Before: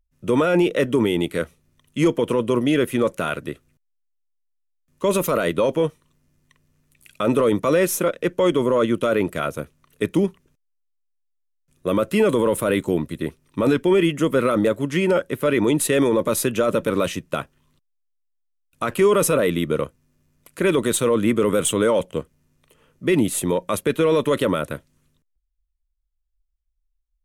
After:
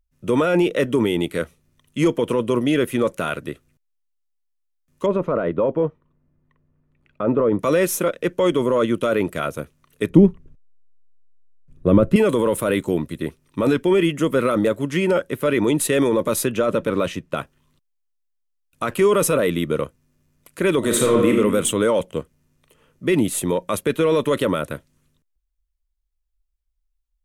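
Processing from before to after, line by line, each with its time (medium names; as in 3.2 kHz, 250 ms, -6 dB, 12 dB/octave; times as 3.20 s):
5.06–7.59 s: low-pass 1.2 kHz
10.10–12.16 s: tilt EQ -4 dB/octave
16.44–17.36 s: treble shelf 7.8 kHz -> 5.2 kHz -10 dB
20.78–21.31 s: reverb throw, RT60 0.89 s, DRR 0 dB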